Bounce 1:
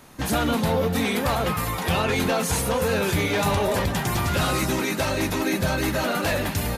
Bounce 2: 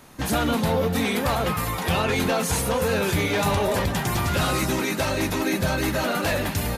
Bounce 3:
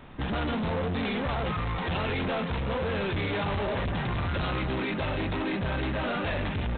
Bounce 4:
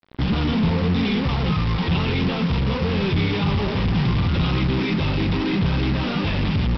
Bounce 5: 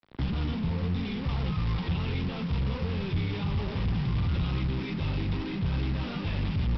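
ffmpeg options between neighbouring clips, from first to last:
ffmpeg -i in.wav -af anull out.wav
ffmpeg -i in.wav -af "lowshelf=frequency=96:gain=10,aresample=8000,asoftclip=type=tanh:threshold=-27dB,aresample=44100" out.wav
ffmpeg -i in.wav -af "equalizer=frequency=160:width_type=o:width=0.67:gain=6,equalizer=frequency=630:width_type=o:width=0.67:gain=-12,equalizer=frequency=1600:width_type=o:width=0.67:gain=-11,aresample=11025,acrusher=bits=5:mix=0:aa=0.5,aresample=44100,volume=8.5dB" out.wav
ffmpeg -i in.wav -filter_complex "[0:a]acrossover=split=130[link_01][link_02];[link_02]acompressor=threshold=-29dB:ratio=4[link_03];[link_01][link_03]amix=inputs=2:normalize=0,volume=-5dB" out.wav

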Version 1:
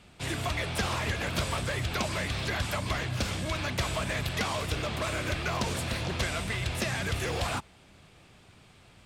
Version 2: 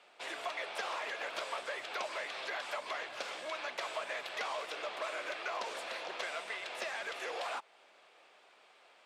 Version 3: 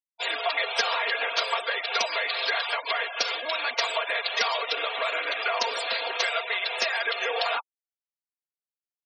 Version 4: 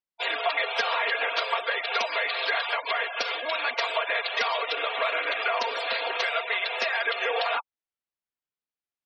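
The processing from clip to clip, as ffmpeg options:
ffmpeg -i in.wav -filter_complex "[0:a]highpass=frequency=510:width=0.5412,highpass=frequency=510:width=1.3066,aemphasis=mode=reproduction:type=bsi,asplit=2[link_01][link_02];[link_02]acompressor=threshold=-42dB:ratio=6,volume=-0.5dB[link_03];[link_01][link_03]amix=inputs=2:normalize=0,volume=-7dB" out.wav
ffmpeg -i in.wav -af "afftfilt=real='re*gte(hypot(re,im),0.00708)':imag='im*gte(hypot(re,im),0.00708)':win_size=1024:overlap=0.75,equalizer=frequency=5900:width_type=o:width=1.6:gain=14,aecho=1:1:4.3:0.85,volume=7.5dB" out.wav
ffmpeg -i in.wav -filter_complex "[0:a]asplit=2[link_01][link_02];[link_02]alimiter=limit=-18.5dB:level=0:latency=1:release=355,volume=-2.5dB[link_03];[link_01][link_03]amix=inputs=2:normalize=0,lowpass=3500,volume=-2.5dB" out.wav

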